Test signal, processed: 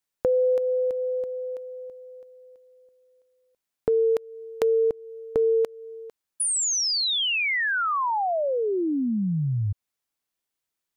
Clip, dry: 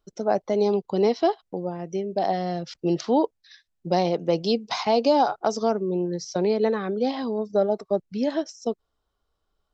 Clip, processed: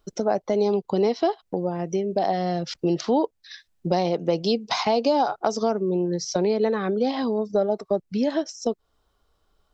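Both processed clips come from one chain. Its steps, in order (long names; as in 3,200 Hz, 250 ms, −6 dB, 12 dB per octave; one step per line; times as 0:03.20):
downward compressor 2 to 1, threshold −34 dBFS
level +8.5 dB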